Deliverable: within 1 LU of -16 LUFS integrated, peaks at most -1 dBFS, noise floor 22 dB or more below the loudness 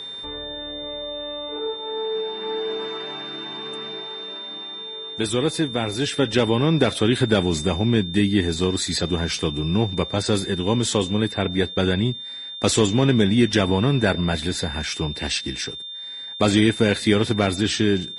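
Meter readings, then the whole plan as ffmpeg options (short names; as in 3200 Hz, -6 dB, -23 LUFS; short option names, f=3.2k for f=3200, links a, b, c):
steady tone 3600 Hz; tone level -32 dBFS; loudness -22.5 LUFS; peak -6.0 dBFS; loudness target -16.0 LUFS
-> -af "bandreject=f=3.6k:w=30"
-af "volume=6.5dB,alimiter=limit=-1dB:level=0:latency=1"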